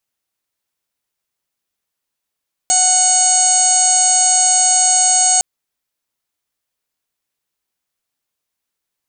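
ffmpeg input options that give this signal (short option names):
-f lavfi -i "aevalsrc='0.126*sin(2*PI*738*t)+0.02*sin(2*PI*1476*t)+0.0188*sin(2*PI*2214*t)+0.0335*sin(2*PI*2952*t)+0.0178*sin(2*PI*3690*t)+0.0631*sin(2*PI*4428*t)+0.0224*sin(2*PI*5166*t)+0.0335*sin(2*PI*5904*t)+0.211*sin(2*PI*6642*t)+0.0794*sin(2*PI*7380*t)+0.178*sin(2*PI*8118*t)+0.0211*sin(2*PI*8856*t)':d=2.71:s=44100"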